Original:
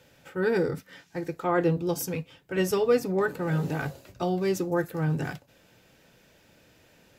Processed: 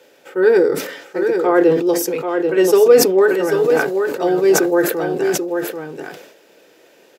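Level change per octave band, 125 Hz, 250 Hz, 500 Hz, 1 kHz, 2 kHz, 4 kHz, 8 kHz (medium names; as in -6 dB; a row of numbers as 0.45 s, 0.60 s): -3.5 dB, +10.5 dB, +14.5 dB, +10.0 dB, +11.5 dB, +13.5 dB, +16.0 dB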